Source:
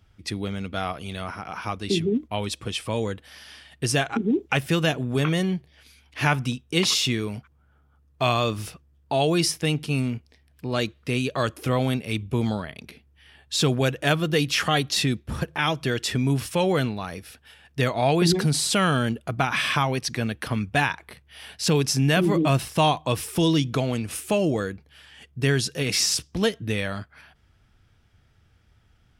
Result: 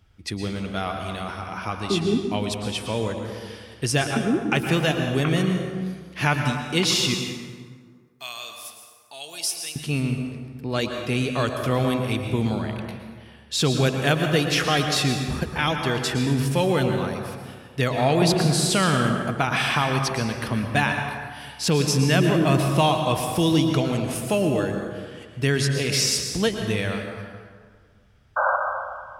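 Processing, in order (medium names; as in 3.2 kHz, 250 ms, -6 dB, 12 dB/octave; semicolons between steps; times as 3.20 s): 7.14–9.76 s: differentiator; 28.36–28.57 s: painted sound noise 510–1600 Hz -21 dBFS; plate-style reverb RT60 1.8 s, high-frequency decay 0.55×, pre-delay 100 ms, DRR 4 dB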